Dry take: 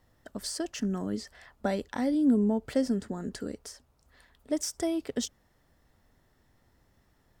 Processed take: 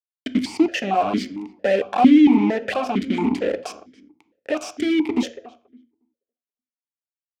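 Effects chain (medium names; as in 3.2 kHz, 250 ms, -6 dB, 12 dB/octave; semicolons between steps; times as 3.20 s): band-stop 1.2 kHz, Q 7.5; reverb removal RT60 0.54 s; 1.76–3.44 s: hum notches 60/120/180/240/300/360/420 Hz; compression 1.5:1, threshold -39 dBFS, peak gain reduction 7 dB; peak limiter -32 dBFS, peak gain reduction 10.5 dB; fuzz box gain 47 dB, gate -46 dBFS; filtered feedback delay 280 ms, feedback 16%, low-pass 1.3 kHz, level -15.5 dB; on a send at -11 dB: reverberation RT60 0.40 s, pre-delay 3 ms; on the sum: stepped vowel filter 4.4 Hz; trim +9 dB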